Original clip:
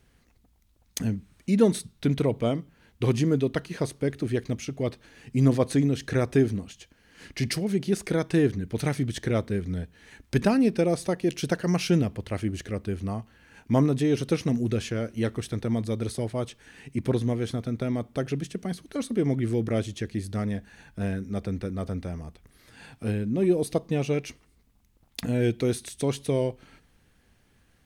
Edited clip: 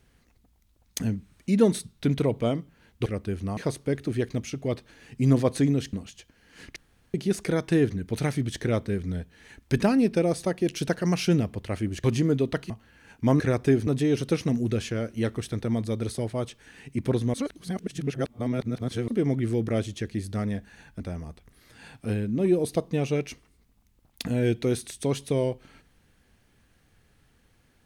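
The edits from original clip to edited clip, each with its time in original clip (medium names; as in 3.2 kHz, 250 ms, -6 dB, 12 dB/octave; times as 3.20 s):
3.06–3.72 s: swap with 12.66–13.17 s
6.08–6.55 s: move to 13.87 s
7.38–7.76 s: room tone
17.34–19.08 s: reverse
21.00–21.98 s: delete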